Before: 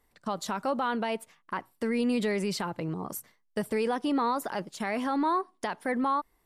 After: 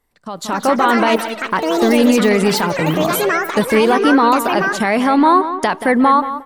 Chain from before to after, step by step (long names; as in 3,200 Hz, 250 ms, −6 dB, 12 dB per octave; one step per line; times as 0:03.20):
bucket-brigade delay 179 ms, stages 4,096, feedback 32%, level −11 dB
delay with pitch and tempo change per echo 338 ms, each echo +6 semitones, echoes 3, each echo −6 dB
automatic gain control gain up to 15.5 dB
level +1 dB